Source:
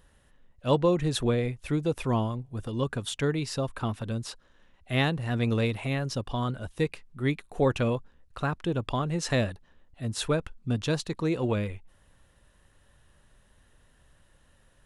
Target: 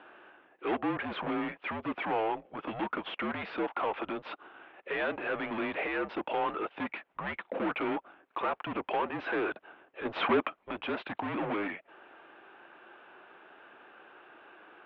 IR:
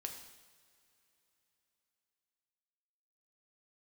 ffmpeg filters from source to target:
-filter_complex "[0:a]asplit=2[s0][s1];[s1]highpass=f=720:p=1,volume=50.1,asoftclip=type=tanh:threshold=0.282[s2];[s0][s2]amix=inputs=2:normalize=0,lowpass=f=1200:p=1,volume=0.501,asettb=1/sr,asplit=3[s3][s4][s5];[s3]atrim=end=10.054[s6];[s4]atrim=start=10.05:end=10.57,asetpts=PTS-STARTPTS,afade=t=in:d=0.004:c=qsin,afade=t=out:st=0.516:d=0.004:c=qsin,acontrast=67[s7];[s5]atrim=start=10.566[s8];[s6][s7]acrossfade=d=0.004:c1=hsin:c2=qsin[s9];[s9][s8]acrossfade=d=0.004:c1=qsin:c2=hsin,highpass=f=560:t=q:w=0.5412,highpass=f=560:t=q:w=1.307,lowpass=f=3300:t=q:w=0.5176,lowpass=f=3300:t=q:w=0.7071,lowpass=f=3300:t=q:w=1.932,afreqshift=-210,volume=0.422"

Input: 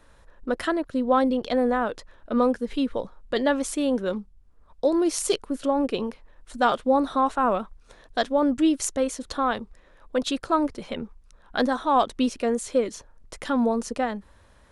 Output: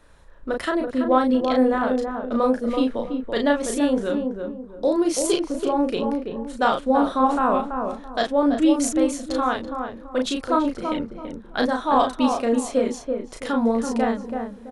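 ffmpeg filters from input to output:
-filter_complex "[0:a]asplit=2[s0][s1];[s1]adelay=35,volume=0.668[s2];[s0][s2]amix=inputs=2:normalize=0,asplit=2[s3][s4];[s4]adelay=332,lowpass=f=980:p=1,volume=0.631,asplit=2[s5][s6];[s6]adelay=332,lowpass=f=980:p=1,volume=0.34,asplit=2[s7][s8];[s8]adelay=332,lowpass=f=980:p=1,volume=0.34,asplit=2[s9][s10];[s10]adelay=332,lowpass=f=980:p=1,volume=0.34[s11];[s5][s7][s9][s11]amix=inputs=4:normalize=0[s12];[s3][s12]amix=inputs=2:normalize=0"

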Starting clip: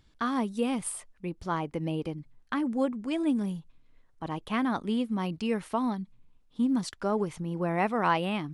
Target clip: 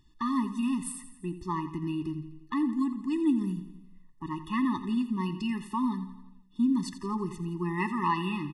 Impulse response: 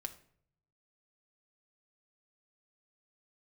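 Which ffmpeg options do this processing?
-filter_complex "[0:a]asettb=1/sr,asplit=3[s0][s1][s2];[s0]atrim=end=7.294[s3];[s1]atrim=start=7.29:end=8.05,asetpts=PTS-STARTPTS,afade=t=in:d=0.004:c=qsin,afade=t=out:st=0.756:d=0.004:c=qsin,adynamicequalizer=threshold=0.00316:dfrequency=6900:dqfactor=0.71:tfrequency=6900:tqfactor=0.71:attack=5:release=100:ratio=0.375:range=3:mode=boostabove:tftype=bell[s4];[s2]atrim=start=8.046[s5];[s3][s4]acrossfade=d=0.004:c1=hsin:c2=qsin[s6];[s6][s5]acrossfade=d=0.004:c1=qsin:c2=hsin,aecho=1:1:85|170|255|340|425|510:0.211|0.12|0.0687|0.0391|0.0223|0.0127,asplit=2[s7][s8];[1:a]atrim=start_sample=2205[s9];[s8][s9]afir=irnorm=-1:irlink=0,volume=1.19[s10];[s7][s10]amix=inputs=2:normalize=0,afftfilt=real='re*eq(mod(floor(b*sr/1024/420),2),0)':imag='im*eq(mod(floor(b*sr/1024/420),2),0)':win_size=1024:overlap=0.75,volume=0.562"

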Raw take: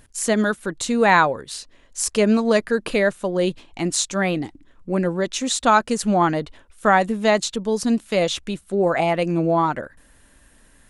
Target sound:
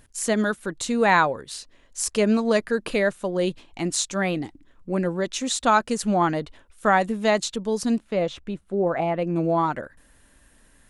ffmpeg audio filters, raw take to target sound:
-filter_complex "[0:a]asettb=1/sr,asplit=3[s0][s1][s2];[s0]atrim=end=7.984[s3];[s1]atrim=start=7.98:end=9.36,asetpts=PTS-STARTPTS,afade=t=in:d=0.004:c=qsin,afade=t=out:st=1.376:d=0.004:c=qsin,lowpass=f=1200:p=1[s4];[s2]atrim=start=9.356[s5];[s3][s4]acrossfade=d=0.004:c1=hsin:c2=qsin[s6];[s6][s5]acrossfade=d=0.004:c1=qsin:c2=hsin,volume=0.708"

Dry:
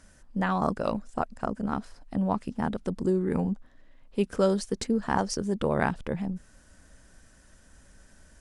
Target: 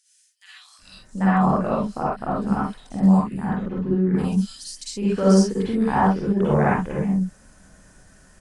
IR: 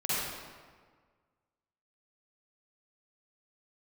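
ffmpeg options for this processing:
-filter_complex "[0:a]asettb=1/sr,asplit=3[s0][s1][s2];[s0]atrim=end=2.304[s3];[s1]atrim=start=2.3:end=4.38,asetpts=PTS-STARTPTS,afade=t=in:d=0.004:c=qsin,afade=t=out:st=2.076:d=0.004:c=qsin,equalizer=f=570:t=o:w=2:g=-6.5[s4];[s2]atrim=start=4.376[s5];[s3][s4]acrossfade=d=0.004:c1=hsin:c2=qsin[s6];[s6][s5]acrossfade=d=0.004:c1=qsin:c2=hsin,acrossover=split=2900[s7][s8];[s7]adelay=790[s9];[s9][s8]amix=inputs=2:normalize=0[s10];[1:a]atrim=start_sample=2205,afade=t=out:st=0.18:d=0.01,atrim=end_sample=8379[s11];[s10][s11]afir=irnorm=-1:irlink=0"

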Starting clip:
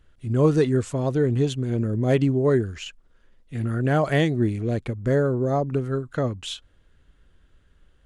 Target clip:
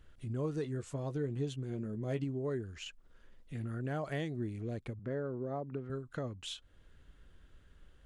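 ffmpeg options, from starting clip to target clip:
-filter_complex "[0:a]acompressor=threshold=0.00562:ratio=2,asettb=1/sr,asplit=3[s0][s1][s2];[s0]atrim=end=0.624[s3];[s1]atrim=start=0.62:end=2.24,asetpts=PTS-STARTPTS,afade=t=in:d=0.004:c=qsin,afade=t=out:st=1.616:d=0.004:c=qsin,asplit=2[s4][s5];[s5]adelay=14,volume=0.376[s6];[s4][s6]amix=inputs=2:normalize=0,atrim=end_sample=71442[s7];[s2]atrim=start=2.236[s8];[s3][s7]acrossfade=d=0.004:c1=hsin:c2=qsin[s9];[s9][s8]acrossfade=d=0.004:c1=qsin:c2=hsin,asettb=1/sr,asplit=3[s10][s11][s12];[s10]atrim=end=4.994[s13];[s11]atrim=start=4.99:end=5.9,asetpts=PTS-STARTPTS,afade=t=in:d=0.004:c=qsin,afade=t=out:st=0.906:d=0.004:c=qsin,highpass=130,lowpass=2800[s14];[s12]atrim=start=5.896[s15];[s13][s14]acrossfade=d=0.004:c1=hsin:c2=qsin[s16];[s16][s15]acrossfade=d=0.004:c1=qsin:c2=hsin,volume=0.841"

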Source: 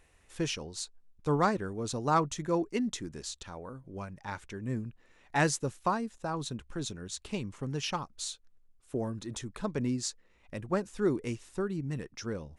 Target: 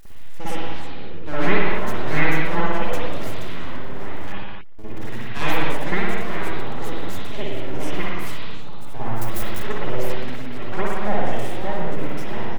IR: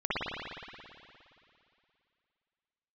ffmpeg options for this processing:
-filter_complex "[0:a]aeval=exprs='val(0)+0.5*0.0188*sgn(val(0))':c=same,asettb=1/sr,asplit=3[s0][s1][s2];[s0]atrim=end=0.694[s3];[s1]atrim=start=0.69:end=1.71,asetpts=PTS-STARTPTS,afade=t=in:d=0.004:c=qsin,afade=t=out:st=1.016:d=0.004:c=qsin,lowpass=f=3300:w=0.5412,lowpass=f=3300:w=1.3066[s4];[s2]atrim=start=1.706[s5];[s3][s4]acrossfade=d=0.004:c1=hsin:c2=qsin[s6];[s6][s5]acrossfade=d=0.004:c1=qsin:c2=hsin,asplit=3[s7][s8][s9];[s7]afade=t=out:st=9.15:d=0.02[s10];[s8]aemphasis=mode=production:type=50fm,afade=t=in:st=9.15:d=0.02,afade=t=out:st=9.62:d=0.02[s11];[s9]afade=t=in:st=9.62:d=0.02[s12];[s10][s11][s12]amix=inputs=3:normalize=0,asplit=2[s13][s14];[s14]adelay=340,lowpass=f=1700:p=1,volume=0.251,asplit=2[s15][s16];[s16]adelay=340,lowpass=f=1700:p=1,volume=0.5,asplit=2[s17][s18];[s18]adelay=340,lowpass=f=1700:p=1,volume=0.5,asplit=2[s19][s20];[s20]adelay=340,lowpass=f=1700:p=1,volume=0.5,asplit=2[s21][s22];[s22]adelay=340,lowpass=f=1700:p=1,volume=0.5[s23];[s13][s15][s17][s19][s21][s23]amix=inputs=6:normalize=0,aeval=exprs='abs(val(0))':c=same,asettb=1/sr,asplit=3[s24][s25][s26];[s24]atrim=end=4.324[s27];[s25]atrim=start=4.32:end=4.79,asetpts=PTS-STARTPTS,afade=t=in:d=0.004:c=qsin,afade=t=out:st=0.466:d=0.004:c=qsin,aeval=exprs='(tanh(282*val(0)+0.15)-tanh(0.15))/282':c=same[s28];[s26]atrim=start=4.786[s29];[s27][s28]acrossfade=d=0.004:c1=hsin:c2=qsin[s30];[s30][s29]acrossfade=d=0.004:c1=qsin:c2=hsin[s31];[1:a]atrim=start_sample=2205,afade=t=out:st=0.36:d=0.01,atrim=end_sample=16317[s32];[s31][s32]afir=irnorm=-1:irlink=0"

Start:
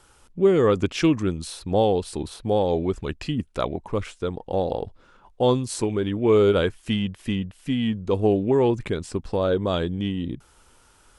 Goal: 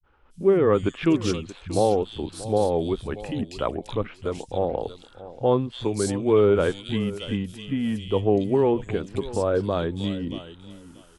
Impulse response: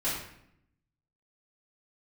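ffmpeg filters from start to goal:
-filter_complex "[0:a]asplit=2[s0][s1];[s1]aecho=0:1:633|1266:0.15|0.0269[s2];[s0][s2]amix=inputs=2:normalize=0,agate=range=0.0224:threshold=0.00282:ratio=3:detection=peak,acrossover=split=150|2800[s3][s4][s5];[s4]adelay=30[s6];[s5]adelay=300[s7];[s3][s6][s7]amix=inputs=3:normalize=0" -ar 32000 -c:a libmp3lame -b:a 80k

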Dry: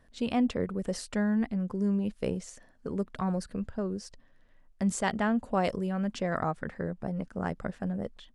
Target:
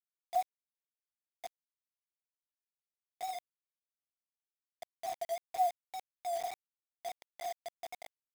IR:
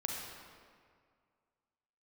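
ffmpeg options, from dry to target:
-af "asuperpass=centerf=710:order=12:qfactor=7.8,afwtdn=0.00447,acrusher=bits=7:mix=0:aa=0.000001,volume=1.58"

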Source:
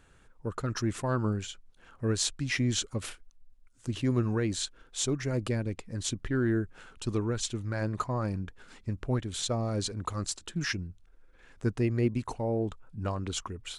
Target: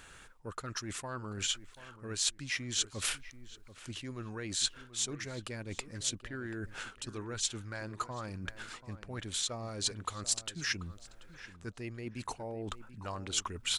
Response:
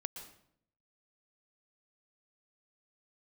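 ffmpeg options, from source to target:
-filter_complex "[0:a]areverse,acompressor=threshold=0.00891:ratio=12,areverse,tiltshelf=f=830:g=-6,asplit=2[s0][s1];[s1]adelay=735,lowpass=f=2000:p=1,volume=0.2,asplit=2[s2][s3];[s3]adelay=735,lowpass=f=2000:p=1,volume=0.27,asplit=2[s4][s5];[s5]adelay=735,lowpass=f=2000:p=1,volume=0.27[s6];[s0][s2][s4][s6]amix=inputs=4:normalize=0,volume=2.24"

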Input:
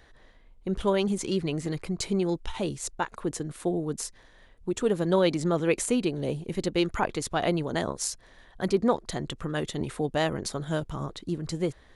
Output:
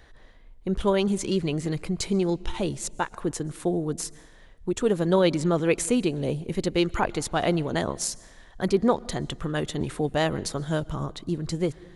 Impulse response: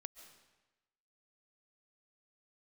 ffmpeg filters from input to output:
-filter_complex "[0:a]asplit=2[s0][s1];[1:a]atrim=start_sample=2205,asetrate=48510,aresample=44100,lowshelf=f=180:g=11[s2];[s1][s2]afir=irnorm=-1:irlink=0,volume=0.531[s3];[s0][s3]amix=inputs=2:normalize=0"

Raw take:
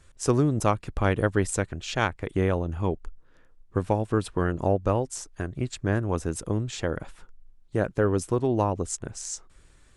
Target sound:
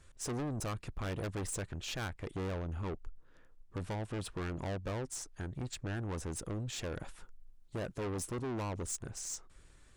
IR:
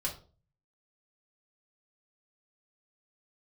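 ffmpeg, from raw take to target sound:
-filter_complex "[0:a]asettb=1/sr,asplit=3[s0][s1][s2];[s0]atrim=end=6.764[s3];[s1]atrim=start=6.76:end=9.09,asetpts=PTS-STARTPTS,afade=t=in:d=0.004:c=qsin,afade=t=out:st=2.326:d=0.004:c=qsin,highshelf=f=6700:g=6.5[s4];[s2]atrim=start=9.086[s5];[s3][s4]acrossfade=d=0.004:c1=hsin:c2=qsin[s6];[s6][s5]acrossfade=d=0.004:c1=qsin:c2=hsin,aeval=exprs='(tanh(35.5*val(0)+0.2)-tanh(0.2))/35.5':c=same,volume=0.668"

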